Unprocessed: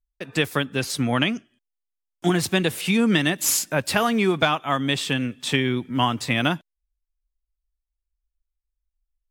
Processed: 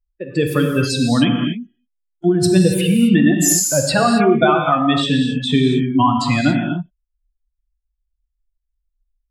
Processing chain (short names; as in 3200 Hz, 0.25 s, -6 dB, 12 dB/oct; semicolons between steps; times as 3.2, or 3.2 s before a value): spectral contrast raised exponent 2.3; non-linear reverb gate 0.3 s flat, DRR 2 dB; gain +5.5 dB